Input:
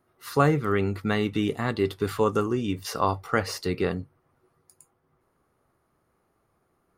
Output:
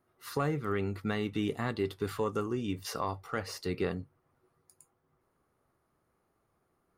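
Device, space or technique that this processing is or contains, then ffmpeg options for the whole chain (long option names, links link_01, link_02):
soft clipper into limiter: -af "asoftclip=type=tanh:threshold=-7.5dB,alimiter=limit=-15.5dB:level=0:latency=1:release=483,volume=-5dB"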